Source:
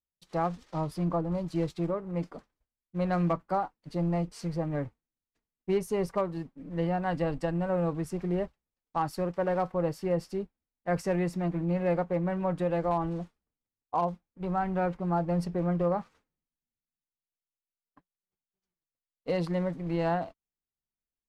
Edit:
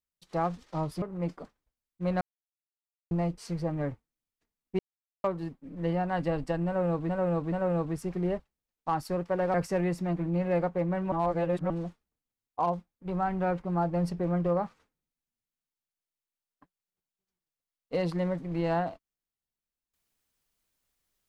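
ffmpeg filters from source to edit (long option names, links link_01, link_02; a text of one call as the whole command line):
ffmpeg -i in.wav -filter_complex "[0:a]asplit=11[link_01][link_02][link_03][link_04][link_05][link_06][link_07][link_08][link_09][link_10][link_11];[link_01]atrim=end=1.022[link_12];[link_02]atrim=start=1.958:end=3.15,asetpts=PTS-STARTPTS,afade=type=out:start_time=1.188:duration=0.004:curve=hsin[link_13];[link_03]atrim=start=3.15:end=4.05,asetpts=PTS-STARTPTS,volume=0[link_14];[link_04]atrim=start=4.05:end=5.73,asetpts=PTS-STARTPTS,afade=type=in:duration=0.004:curve=hsin,afade=type=out:start_time=1.676:duration=0.004:curve=hsin[link_15];[link_05]atrim=start=5.73:end=6.18,asetpts=PTS-STARTPTS,volume=0[link_16];[link_06]atrim=start=6.18:end=8.032,asetpts=PTS-STARTPTS,afade=type=in:duration=0.004:curve=hsin[link_17];[link_07]atrim=start=7.598:end=8.032[link_18];[link_08]atrim=start=7.598:end=9.622[link_19];[link_09]atrim=start=10.888:end=12.472[link_20];[link_10]atrim=start=12.468:end=13.052,asetpts=PTS-STARTPTS,areverse[link_21];[link_11]atrim=start=13.048[link_22];[link_13][link_14][link_15][link_16][link_17]concat=n=5:v=0:a=1[link_23];[link_12][link_23]acrossfade=duration=0.004:curve1=hsin:curve2=hsin[link_24];[link_24][link_18]acrossfade=duration=0.004:curve1=hsin:curve2=hsin[link_25];[link_25][link_19]acrossfade=duration=0.004:curve1=hsin:curve2=hsin[link_26];[link_26][link_20]acrossfade=duration=0.004:curve1=hsin:curve2=hsin[link_27];[link_27][link_21]acrossfade=duration=0.004:curve1=hsin:curve2=hsin[link_28];[link_28][link_22]acrossfade=duration=0.004:curve1=hsin:curve2=hsin" out.wav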